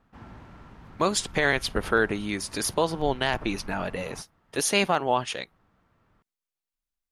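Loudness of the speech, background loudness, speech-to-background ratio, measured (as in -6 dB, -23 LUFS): -26.5 LUFS, -46.0 LUFS, 19.5 dB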